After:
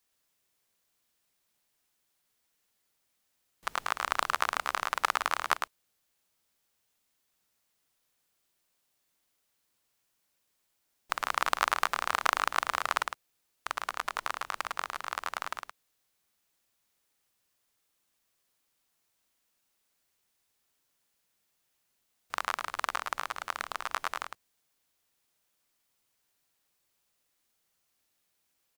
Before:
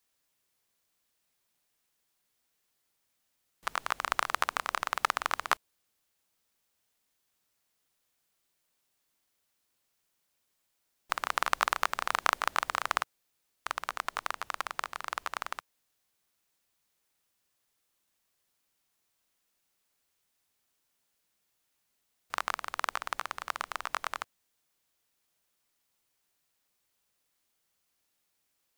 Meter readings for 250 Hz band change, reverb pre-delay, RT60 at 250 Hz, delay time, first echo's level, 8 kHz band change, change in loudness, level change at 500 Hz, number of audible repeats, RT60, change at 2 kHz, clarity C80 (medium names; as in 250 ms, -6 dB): +1.0 dB, no reverb, no reverb, 107 ms, -6.0 dB, +1.0 dB, +1.0 dB, +1.0 dB, 1, no reverb, +1.0 dB, no reverb